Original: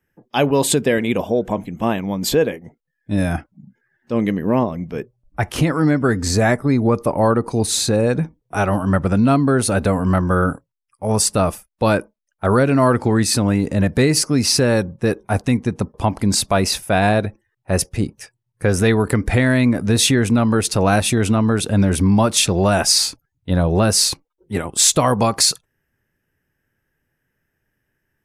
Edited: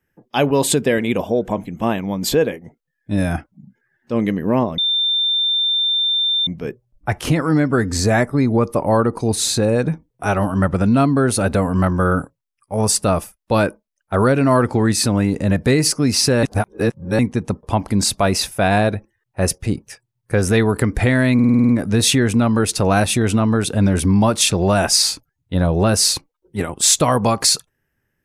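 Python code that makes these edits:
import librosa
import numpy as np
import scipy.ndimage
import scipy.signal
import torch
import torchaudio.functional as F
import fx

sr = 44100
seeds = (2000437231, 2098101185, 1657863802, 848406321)

y = fx.edit(x, sr, fx.insert_tone(at_s=4.78, length_s=1.69, hz=3580.0, db=-15.0),
    fx.reverse_span(start_s=14.74, length_s=0.76),
    fx.stutter(start_s=19.65, slice_s=0.05, count=8), tone=tone)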